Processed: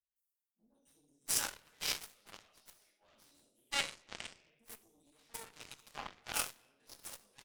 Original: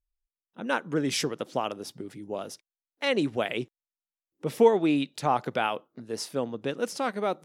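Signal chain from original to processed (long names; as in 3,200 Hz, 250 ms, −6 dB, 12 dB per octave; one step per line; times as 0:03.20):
convolution reverb RT60 1.2 s, pre-delay 5 ms, DRR −6.5 dB
in parallel at −0.5 dB: brickwall limiter −10.5 dBFS, peak gain reduction 10 dB
on the sum: first difference
three-band delay without the direct sound lows, highs, mids 160/690 ms, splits 380/5,500 Hz
reversed playback
upward compression, threshold −35 dBFS
reversed playback
harmonic generator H 2 −16 dB, 3 −11 dB, 7 −31 dB, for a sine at −12.5 dBFS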